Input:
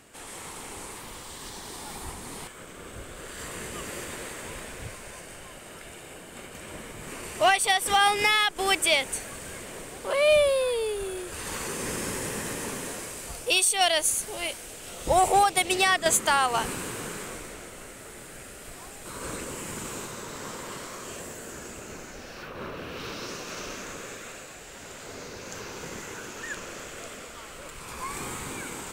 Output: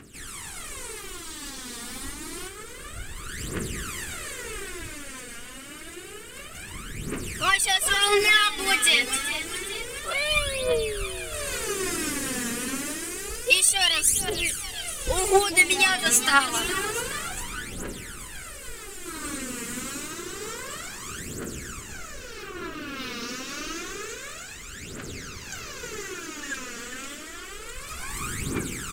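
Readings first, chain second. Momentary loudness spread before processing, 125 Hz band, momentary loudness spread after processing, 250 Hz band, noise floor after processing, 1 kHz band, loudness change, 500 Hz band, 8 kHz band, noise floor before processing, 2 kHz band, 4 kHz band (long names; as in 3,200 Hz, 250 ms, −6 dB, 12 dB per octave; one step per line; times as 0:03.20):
21 LU, +3.0 dB, 19 LU, +3.5 dB, −41 dBFS, −3.0 dB, +2.0 dB, −2.0 dB, +4.0 dB, −44 dBFS, +4.0 dB, +3.5 dB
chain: flat-topped bell 710 Hz −9.5 dB 1.2 octaves
echo with shifted repeats 415 ms, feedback 61%, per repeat +30 Hz, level −11.5 dB
phase shifter 0.28 Hz, delay 4.3 ms, feedback 75%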